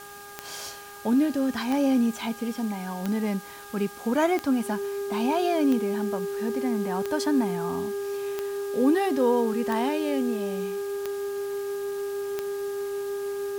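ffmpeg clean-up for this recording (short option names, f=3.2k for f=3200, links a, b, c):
-af "adeclick=t=4,bandreject=f=406.4:t=h:w=4,bandreject=f=812.8:t=h:w=4,bandreject=f=1.2192k:t=h:w=4,bandreject=f=1.6256k:t=h:w=4,bandreject=f=400:w=30,afwtdn=0.0045"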